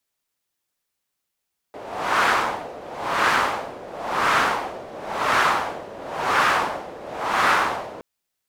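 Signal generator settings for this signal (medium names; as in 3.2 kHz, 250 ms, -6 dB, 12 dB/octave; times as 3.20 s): wind-like swept noise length 6.27 s, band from 550 Hz, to 1.3 kHz, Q 1.9, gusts 6, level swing 19 dB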